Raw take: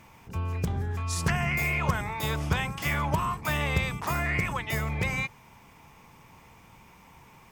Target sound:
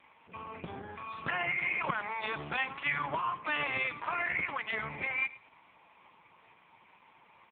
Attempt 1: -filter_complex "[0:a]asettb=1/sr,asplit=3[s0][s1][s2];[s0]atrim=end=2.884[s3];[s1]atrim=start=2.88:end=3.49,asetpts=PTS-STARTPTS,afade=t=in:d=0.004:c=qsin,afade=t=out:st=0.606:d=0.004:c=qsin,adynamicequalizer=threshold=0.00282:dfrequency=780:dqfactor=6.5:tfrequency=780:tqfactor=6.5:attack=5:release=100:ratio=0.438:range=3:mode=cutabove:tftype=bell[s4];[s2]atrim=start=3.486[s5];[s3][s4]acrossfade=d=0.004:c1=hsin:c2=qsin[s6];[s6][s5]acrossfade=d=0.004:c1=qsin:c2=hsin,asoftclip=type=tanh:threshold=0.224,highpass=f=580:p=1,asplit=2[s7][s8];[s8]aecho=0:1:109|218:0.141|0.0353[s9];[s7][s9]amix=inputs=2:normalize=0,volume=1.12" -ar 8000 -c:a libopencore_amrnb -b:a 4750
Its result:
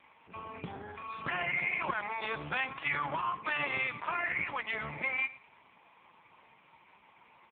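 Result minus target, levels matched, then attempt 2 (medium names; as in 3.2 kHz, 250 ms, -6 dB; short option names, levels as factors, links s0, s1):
saturation: distortion +17 dB
-filter_complex "[0:a]asettb=1/sr,asplit=3[s0][s1][s2];[s0]atrim=end=2.884[s3];[s1]atrim=start=2.88:end=3.49,asetpts=PTS-STARTPTS,afade=t=in:d=0.004:c=qsin,afade=t=out:st=0.606:d=0.004:c=qsin,adynamicequalizer=threshold=0.00282:dfrequency=780:dqfactor=6.5:tfrequency=780:tqfactor=6.5:attack=5:release=100:ratio=0.438:range=3:mode=cutabove:tftype=bell[s4];[s2]atrim=start=3.486[s5];[s3][s4]acrossfade=d=0.004:c1=hsin:c2=qsin[s6];[s6][s5]acrossfade=d=0.004:c1=qsin:c2=hsin,asoftclip=type=tanh:threshold=0.668,highpass=f=580:p=1,asplit=2[s7][s8];[s8]aecho=0:1:109|218:0.141|0.0353[s9];[s7][s9]amix=inputs=2:normalize=0,volume=1.12" -ar 8000 -c:a libopencore_amrnb -b:a 4750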